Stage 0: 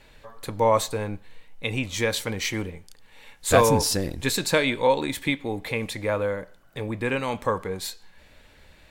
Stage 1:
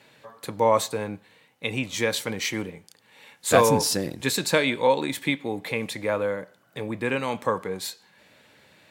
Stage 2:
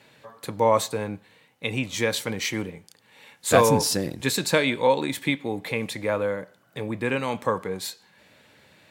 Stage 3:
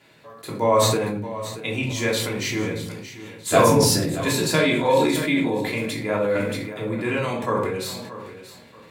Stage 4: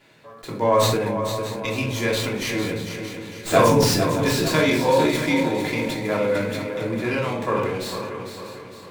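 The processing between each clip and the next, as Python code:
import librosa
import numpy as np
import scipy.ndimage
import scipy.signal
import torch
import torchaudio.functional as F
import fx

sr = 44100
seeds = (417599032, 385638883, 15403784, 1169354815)

y1 = scipy.signal.sosfilt(scipy.signal.butter(4, 120.0, 'highpass', fs=sr, output='sos'), x)
y2 = fx.low_shelf(y1, sr, hz=140.0, db=4.0)
y3 = fx.echo_feedback(y2, sr, ms=629, feedback_pct=28, wet_db=-14)
y3 = fx.room_shoebox(y3, sr, seeds[0], volume_m3=510.0, walls='furnished', distance_m=3.1)
y3 = fx.sustainer(y3, sr, db_per_s=33.0)
y3 = y3 * librosa.db_to_amplitude(-3.5)
y4 = fx.echo_feedback(y3, sr, ms=452, feedback_pct=46, wet_db=-9.0)
y4 = fx.running_max(y4, sr, window=3)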